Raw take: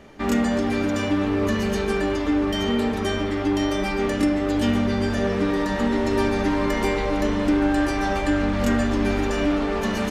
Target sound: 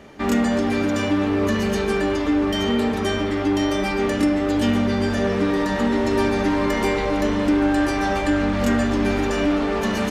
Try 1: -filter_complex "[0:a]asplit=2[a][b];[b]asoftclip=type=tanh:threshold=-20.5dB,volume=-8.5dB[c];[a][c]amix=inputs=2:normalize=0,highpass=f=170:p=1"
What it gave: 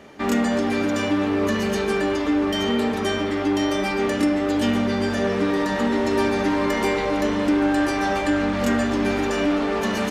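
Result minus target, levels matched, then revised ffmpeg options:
125 Hz band -3.0 dB
-filter_complex "[0:a]asplit=2[a][b];[b]asoftclip=type=tanh:threshold=-20.5dB,volume=-8.5dB[c];[a][c]amix=inputs=2:normalize=0,highpass=f=52:p=1"

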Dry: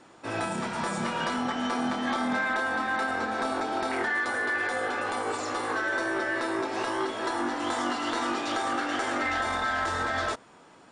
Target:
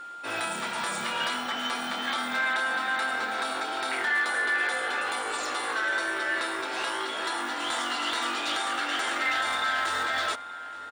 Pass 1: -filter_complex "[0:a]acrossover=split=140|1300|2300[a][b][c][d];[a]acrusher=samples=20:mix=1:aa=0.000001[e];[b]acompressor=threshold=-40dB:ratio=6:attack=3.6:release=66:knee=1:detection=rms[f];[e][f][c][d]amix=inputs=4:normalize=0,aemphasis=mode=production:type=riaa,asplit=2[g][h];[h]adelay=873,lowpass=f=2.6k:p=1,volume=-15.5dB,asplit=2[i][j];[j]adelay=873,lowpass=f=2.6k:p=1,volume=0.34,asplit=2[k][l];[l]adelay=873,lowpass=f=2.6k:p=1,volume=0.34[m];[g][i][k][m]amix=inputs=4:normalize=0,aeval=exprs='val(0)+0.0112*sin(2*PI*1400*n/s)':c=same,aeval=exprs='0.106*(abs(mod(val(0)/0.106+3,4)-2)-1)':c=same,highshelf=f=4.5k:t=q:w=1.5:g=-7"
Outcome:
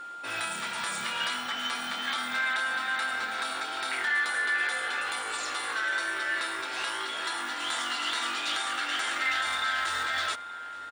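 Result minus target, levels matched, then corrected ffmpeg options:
compressor: peak gain reduction +8 dB
-filter_complex "[0:a]acrossover=split=140|1300|2300[a][b][c][d];[a]acrusher=samples=20:mix=1:aa=0.000001[e];[b]acompressor=threshold=-30.5dB:ratio=6:attack=3.6:release=66:knee=1:detection=rms[f];[e][f][c][d]amix=inputs=4:normalize=0,aemphasis=mode=production:type=riaa,asplit=2[g][h];[h]adelay=873,lowpass=f=2.6k:p=1,volume=-15.5dB,asplit=2[i][j];[j]adelay=873,lowpass=f=2.6k:p=1,volume=0.34,asplit=2[k][l];[l]adelay=873,lowpass=f=2.6k:p=1,volume=0.34[m];[g][i][k][m]amix=inputs=4:normalize=0,aeval=exprs='val(0)+0.0112*sin(2*PI*1400*n/s)':c=same,aeval=exprs='0.106*(abs(mod(val(0)/0.106+3,4)-2)-1)':c=same,highshelf=f=4.5k:t=q:w=1.5:g=-7"

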